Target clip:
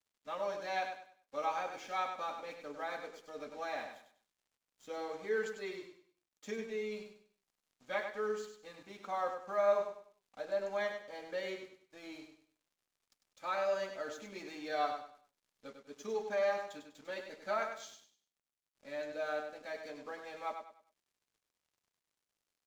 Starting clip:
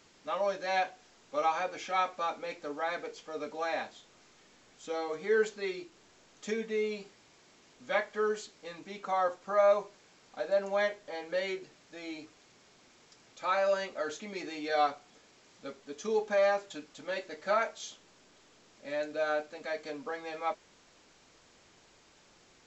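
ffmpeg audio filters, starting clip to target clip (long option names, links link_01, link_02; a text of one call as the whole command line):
ffmpeg -i in.wav -af "aeval=exprs='sgn(val(0))*max(abs(val(0))-0.00168,0)':channel_layout=same,aecho=1:1:99|198|297|396:0.447|0.134|0.0402|0.0121,volume=-6.5dB" out.wav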